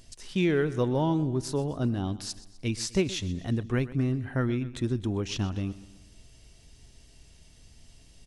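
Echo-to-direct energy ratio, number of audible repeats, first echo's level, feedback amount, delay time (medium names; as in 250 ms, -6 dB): -16.0 dB, 3, -17.0 dB, 49%, 126 ms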